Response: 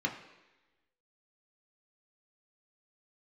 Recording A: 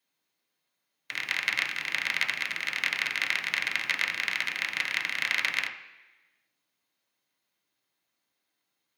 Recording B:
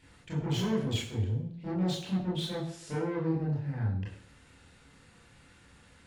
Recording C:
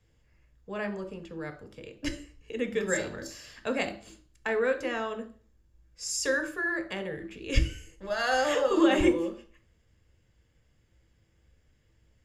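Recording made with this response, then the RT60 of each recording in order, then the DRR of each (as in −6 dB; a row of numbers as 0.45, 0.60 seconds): A; 1.1, 0.60, 0.40 seconds; 0.0, −5.5, 5.5 decibels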